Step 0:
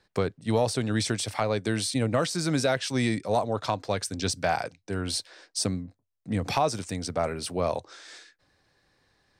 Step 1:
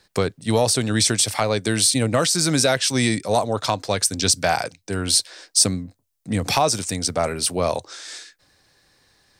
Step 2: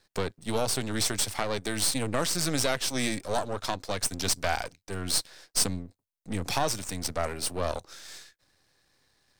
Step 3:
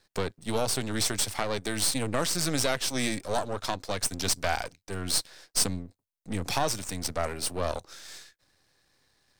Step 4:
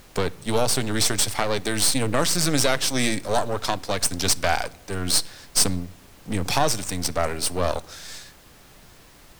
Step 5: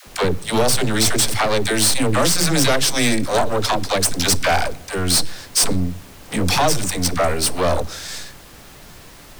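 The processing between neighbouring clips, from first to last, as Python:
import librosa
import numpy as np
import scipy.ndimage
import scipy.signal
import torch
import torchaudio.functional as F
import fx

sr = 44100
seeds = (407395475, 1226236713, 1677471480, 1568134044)

y1 = fx.high_shelf(x, sr, hz=4300.0, db=12.0)
y1 = F.gain(torch.from_numpy(y1), 5.0).numpy()
y2 = np.where(y1 < 0.0, 10.0 ** (-12.0 / 20.0) * y1, y1)
y2 = F.gain(torch.from_numpy(y2), -5.5).numpy()
y3 = y2
y4 = fx.dmg_noise_colour(y3, sr, seeds[0], colour='pink', level_db=-56.0)
y4 = fx.room_shoebox(y4, sr, seeds[1], volume_m3=2600.0, walls='furnished', distance_m=0.34)
y4 = F.gain(torch.from_numpy(y4), 6.0).numpy()
y5 = fx.dispersion(y4, sr, late='lows', ms=75.0, hz=430.0)
y5 = 10.0 ** (-18.5 / 20.0) * np.tanh(y5 / 10.0 ** (-18.5 / 20.0))
y5 = F.gain(torch.from_numpy(y5), 8.0).numpy()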